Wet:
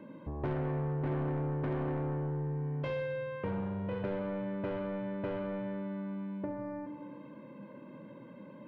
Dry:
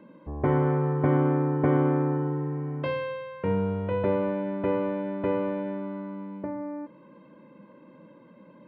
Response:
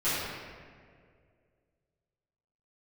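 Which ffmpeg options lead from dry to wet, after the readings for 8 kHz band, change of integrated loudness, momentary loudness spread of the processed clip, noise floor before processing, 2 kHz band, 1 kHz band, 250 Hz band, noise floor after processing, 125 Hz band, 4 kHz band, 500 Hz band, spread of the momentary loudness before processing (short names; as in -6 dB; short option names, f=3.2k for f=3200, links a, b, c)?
n/a, -9.0 dB, 16 LU, -53 dBFS, -7.0 dB, -10.0 dB, -9.0 dB, -51 dBFS, -7.0 dB, -6.5 dB, -9.5 dB, 12 LU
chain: -filter_complex "[0:a]equalizer=f=120:w=4.9:g=9,bandreject=f=1.3k:w=10,asoftclip=type=tanh:threshold=-23dB,asplit=2[a][b];[1:a]atrim=start_sample=2205,asetrate=74970,aresample=44100[c];[b][c]afir=irnorm=-1:irlink=0,volume=-13dB[d];[a][d]amix=inputs=2:normalize=0,acompressor=threshold=-38dB:ratio=2"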